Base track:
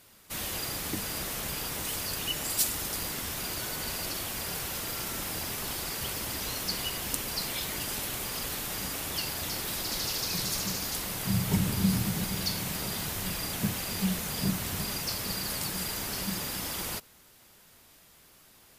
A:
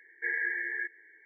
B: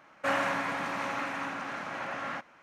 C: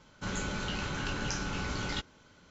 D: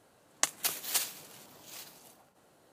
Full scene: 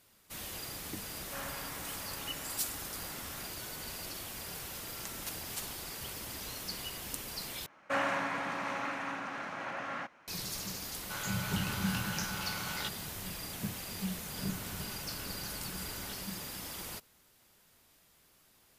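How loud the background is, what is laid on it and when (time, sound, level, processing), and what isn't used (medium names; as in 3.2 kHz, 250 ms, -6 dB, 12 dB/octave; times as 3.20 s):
base track -8 dB
1.08 s: add B -15.5 dB
4.62 s: add D -11.5 dB + peak limiter -13 dBFS
7.66 s: replace with B -3 dB
10.88 s: add C -1.5 dB + high-pass 620 Hz 24 dB/octave
14.13 s: add C -13.5 dB
not used: A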